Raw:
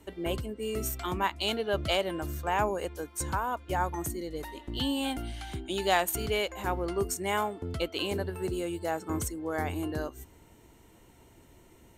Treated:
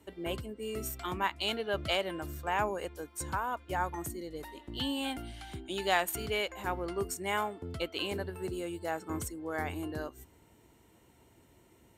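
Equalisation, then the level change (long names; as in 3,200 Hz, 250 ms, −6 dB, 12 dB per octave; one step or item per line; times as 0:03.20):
high-pass filter 60 Hz
notch filter 6,300 Hz, Q 18
dynamic equaliser 1,900 Hz, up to +4 dB, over −40 dBFS, Q 0.76
−4.5 dB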